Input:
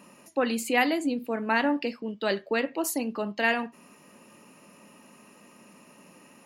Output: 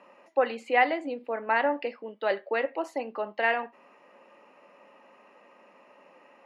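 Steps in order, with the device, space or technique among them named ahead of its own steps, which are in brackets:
tin-can telephone (band-pass filter 460–2,300 Hz; hollow resonant body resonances 550/780/2,000 Hz, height 6 dB, ringing for 25 ms)

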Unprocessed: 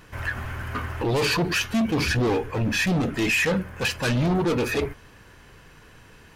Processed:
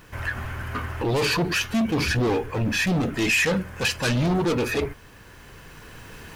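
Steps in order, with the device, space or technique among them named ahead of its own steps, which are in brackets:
cheap recorder with automatic gain (white noise bed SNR 39 dB; camcorder AGC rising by 5.9 dB per second)
0:03.20–0:04.53: parametric band 6,300 Hz +3.5 dB 2 octaves

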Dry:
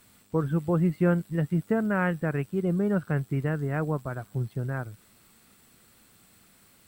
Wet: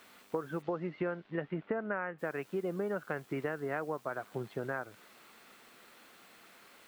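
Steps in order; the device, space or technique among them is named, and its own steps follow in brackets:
baby monitor (band-pass filter 410–3,200 Hz; downward compressor 10 to 1, threshold −38 dBFS, peak gain reduction 16 dB; white noise bed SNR 27 dB)
0:00.61–0:02.18: low-pass filter 5,000 Hz → 2,300 Hz 24 dB per octave
level +6.5 dB

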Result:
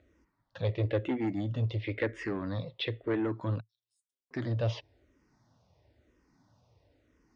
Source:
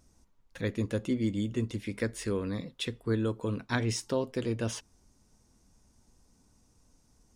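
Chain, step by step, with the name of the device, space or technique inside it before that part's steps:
0:03.60–0:04.31: inverse Chebyshev high-pass filter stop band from 2,100 Hz, stop band 80 dB
barber-pole phaser into a guitar amplifier (frequency shifter mixed with the dry sound −1 Hz; soft clipping −28.5 dBFS, distortion −13 dB; loudspeaker in its box 79–4,200 Hz, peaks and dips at 110 Hz +6 dB, 210 Hz −9 dB, 320 Hz +4 dB, 590 Hz +8 dB, 1,900 Hz +6 dB)
level +3.5 dB

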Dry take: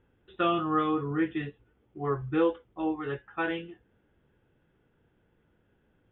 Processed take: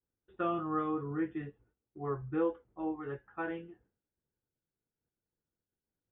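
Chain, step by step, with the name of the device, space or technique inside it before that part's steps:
hearing-loss simulation (low-pass filter 1,600 Hz 12 dB per octave; downward expander −56 dBFS)
level −6 dB

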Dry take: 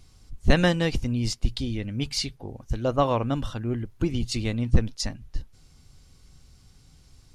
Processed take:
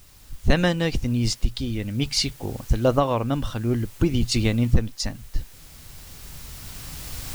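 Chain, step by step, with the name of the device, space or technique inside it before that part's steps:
cheap recorder with automatic gain (white noise bed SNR 29 dB; camcorder AGC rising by 7.1 dB per second)

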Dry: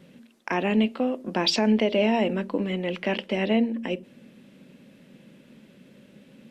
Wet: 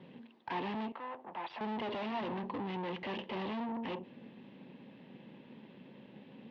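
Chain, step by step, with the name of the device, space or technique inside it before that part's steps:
guitar amplifier (tube saturation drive 38 dB, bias 0.6; bass and treble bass −5 dB, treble −8 dB; loudspeaker in its box 98–3,900 Hz, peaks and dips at 120 Hz +5 dB, 580 Hz −5 dB, 910 Hz +8 dB, 1,400 Hz −8 dB, 2,300 Hz −4 dB)
0:00.92–0:01.61: three-way crossover with the lows and the highs turned down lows −17 dB, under 560 Hz, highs −15 dB, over 2,600 Hz
level +3.5 dB

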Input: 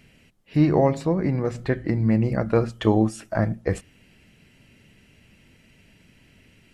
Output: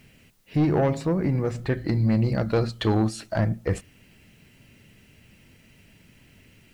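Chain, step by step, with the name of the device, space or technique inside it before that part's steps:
0:01.77–0:03.41: parametric band 4,200 Hz +15 dB 0.32 octaves
open-reel tape (soft clipping −15.5 dBFS, distortion −13 dB; parametric band 110 Hz +2.5 dB; white noise bed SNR 42 dB)

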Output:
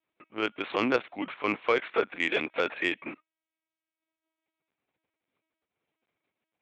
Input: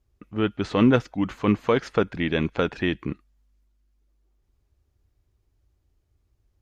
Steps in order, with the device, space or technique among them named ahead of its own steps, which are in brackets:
talking toy (linear-prediction vocoder at 8 kHz pitch kept; high-pass filter 470 Hz 12 dB per octave; parametric band 2,300 Hz +8 dB 0.29 octaves; soft clipping −11.5 dBFS, distortion −20 dB)

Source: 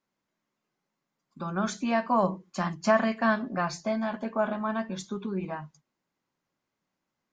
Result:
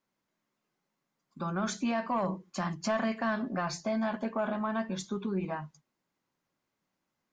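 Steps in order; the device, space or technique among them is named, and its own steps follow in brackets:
soft clipper into limiter (soft clipping −16.5 dBFS, distortion −19 dB; brickwall limiter −23.5 dBFS, peak gain reduction 6.5 dB)

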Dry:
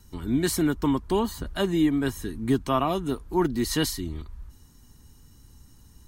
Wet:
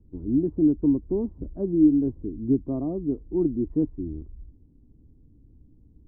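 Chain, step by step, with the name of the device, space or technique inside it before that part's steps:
under water (low-pass filter 500 Hz 24 dB per octave; parametric band 300 Hz +7.5 dB 0.33 octaves)
high-shelf EQ 3,600 Hz +9.5 dB
level −2 dB

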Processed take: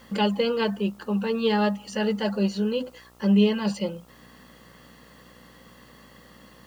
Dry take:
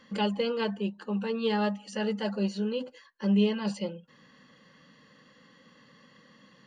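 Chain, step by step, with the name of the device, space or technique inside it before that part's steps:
video cassette with head-switching buzz (hum with harmonics 60 Hz, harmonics 23, −61 dBFS −3 dB per octave; white noise bed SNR 36 dB)
level +5 dB

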